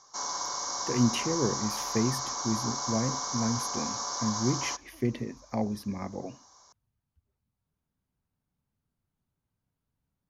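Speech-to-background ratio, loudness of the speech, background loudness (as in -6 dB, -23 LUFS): -0.5 dB, -32.5 LUFS, -32.0 LUFS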